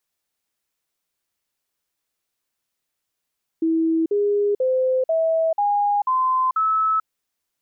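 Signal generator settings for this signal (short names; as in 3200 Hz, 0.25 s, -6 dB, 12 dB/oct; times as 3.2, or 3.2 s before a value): stepped sine 325 Hz up, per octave 3, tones 7, 0.44 s, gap 0.05 s -16.5 dBFS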